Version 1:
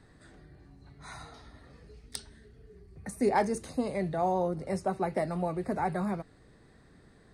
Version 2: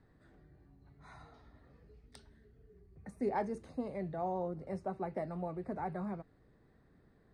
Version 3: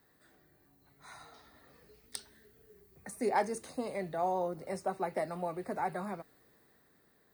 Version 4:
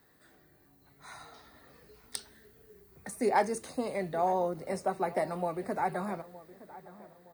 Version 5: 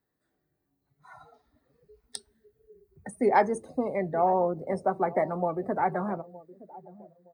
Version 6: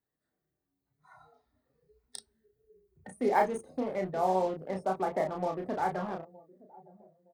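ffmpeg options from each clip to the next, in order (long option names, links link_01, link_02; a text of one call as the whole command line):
ffmpeg -i in.wav -af "lowpass=frequency=1500:poles=1,volume=-7.5dB" out.wav
ffmpeg -i in.wav -af "aemphasis=mode=production:type=riaa,dynaudnorm=framelen=290:gausssize=9:maxgain=5dB,volume=1.5dB" out.wav
ffmpeg -i in.wav -filter_complex "[0:a]asplit=2[link_01][link_02];[link_02]adelay=916,lowpass=frequency=2000:poles=1,volume=-17.5dB,asplit=2[link_03][link_04];[link_04]adelay=916,lowpass=frequency=2000:poles=1,volume=0.42,asplit=2[link_05][link_06];[link_06]adelay=916,lowpass=frequency=2000:poles=1,volume=0.42[link_07];[link_01][link_03][link_05][link_07]amix=inputs=4:normalize=0,volume=3.5dB" out.wav
ffmpeg -i in.wav -filter_complex "[0:a]asplit=2[link_01][link_02];[link_02]adynamicsmooth=sensitivity=5.5:basefreq=1200,volume=-2.5dB[link_03];[link_01][link_03]amix=inputs=2:normalize=0,afftdn=noise_reduction=19:noise_floor=-41" out.wav
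ffmpeg -i in.wav -filter_complex "[0:a]asplit=2[link_01][link_02];[link_02]acrusher=bits=4:mix=0:aa=0.5,volume=-8dB[link_03];[link_01][link_03]amix=inputs=2:normalize=0,asplit=2[link_04][link_05];[link_05]adelay=32,volume=-4dB[link_06];[link_04][link_06]amix=inputs=2:normalize=0,volume=-8.5dB" out.wav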